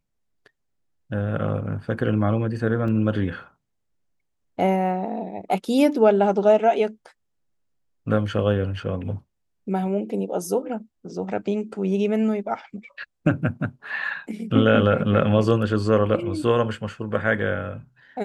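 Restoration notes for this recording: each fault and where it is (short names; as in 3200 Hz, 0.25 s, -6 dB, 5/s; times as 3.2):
2.88 gap 3.1 ms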